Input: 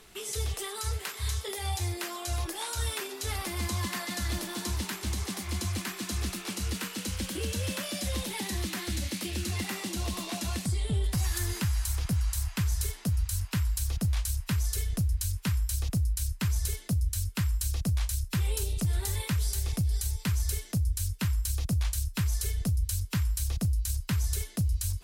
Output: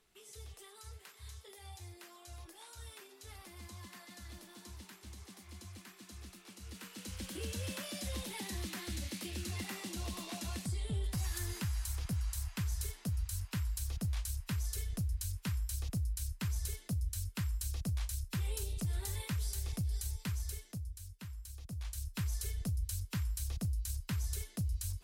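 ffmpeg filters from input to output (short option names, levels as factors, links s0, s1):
-af "volume=1.26,afade=t=in:st=6.6:d=0.84:silence=0.298538,afade=t=out:st=20.15:d=0.86:silence=0.316228,afade=t=in:st=21.64:d=0.57:silence=0.316228"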